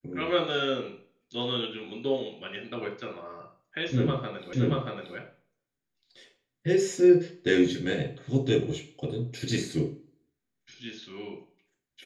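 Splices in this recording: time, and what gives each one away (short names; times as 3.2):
4.53 repeat of the last 0.63 s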